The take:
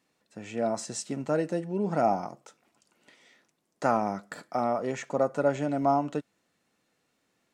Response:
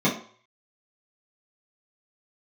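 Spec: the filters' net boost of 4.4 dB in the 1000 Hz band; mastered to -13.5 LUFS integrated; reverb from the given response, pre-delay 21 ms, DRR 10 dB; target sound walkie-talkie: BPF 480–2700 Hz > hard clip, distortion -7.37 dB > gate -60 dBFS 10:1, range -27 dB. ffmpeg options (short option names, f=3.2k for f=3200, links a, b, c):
-filter_complex "[0:a]equalizer=f=1k:t=o:g=7.5,asplit=2[a][b];[1:a]atrim=start_sample=2205,adelay=21[c];[b][c]afir=irnorm=-1:irlink=0,volume=-25.5dB[d];[a][d]amix=inputs=2:normalize=0,highpass=480,lowpass=2.7k,asoftclip=type=hard:threshold=-23dB,agate=range=-27dB:threshold=-60dB:ratio=10,volume=17dB"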